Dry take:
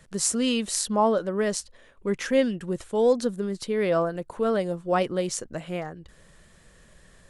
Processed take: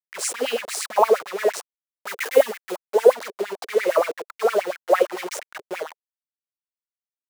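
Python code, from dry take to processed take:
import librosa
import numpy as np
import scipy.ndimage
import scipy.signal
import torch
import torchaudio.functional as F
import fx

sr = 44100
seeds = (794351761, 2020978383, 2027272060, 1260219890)

y = fx.delta_hold(x, sr, step_db=-27.0)
y = fx.filter_lfo_highpass(y, sr, shape='sine', hz=8.7, low_hz=410.0, high_hz=2300.0, q=6.5)
y = fx.high_shelf(y, sr, hz=7400.0, db=8.5, at=(2.07, 2.79))
y = y * 10.0 ** (-2.0 / 20.0)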